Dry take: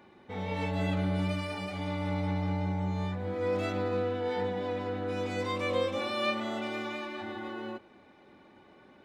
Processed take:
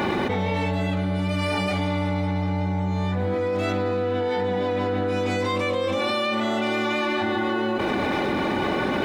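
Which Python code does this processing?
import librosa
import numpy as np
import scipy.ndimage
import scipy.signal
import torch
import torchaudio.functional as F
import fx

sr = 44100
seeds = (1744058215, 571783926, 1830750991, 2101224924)

y = fx.env_flatten(x, sr, amount_pct=100)
y = y * 10.0 ** (2.5 / 20.0)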